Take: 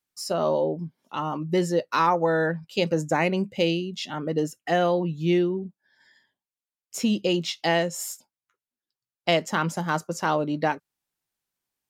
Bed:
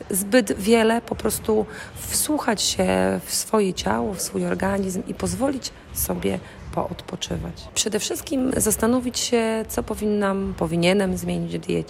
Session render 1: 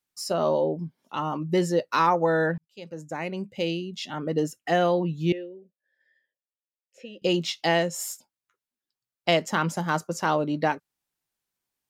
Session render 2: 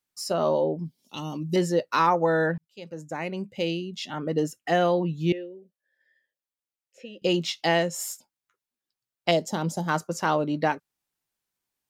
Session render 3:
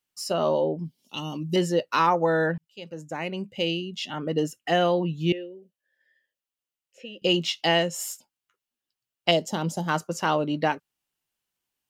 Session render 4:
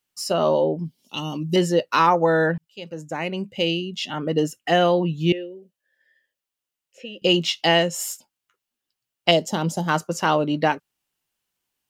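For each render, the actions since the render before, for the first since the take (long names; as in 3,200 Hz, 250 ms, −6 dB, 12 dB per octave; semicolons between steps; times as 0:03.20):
0:02.58–0:04.38: fade in; 0:05.32–0:07.22: formant filter e
0:00.85–0:01.56: drawn EQ curve 260 Hz 0 dB, 640 Hz −7 dB, 1,500 Hz −15 dB, 2,600 Hz 0 dB, 4,500 Hz +9 dB; 0:09.31–0:09.88: flat-topped bell 1,700 Hz −12 dB
parametric band 2,900 Hz +7.5 dB 0.24 octaves
level +4 dB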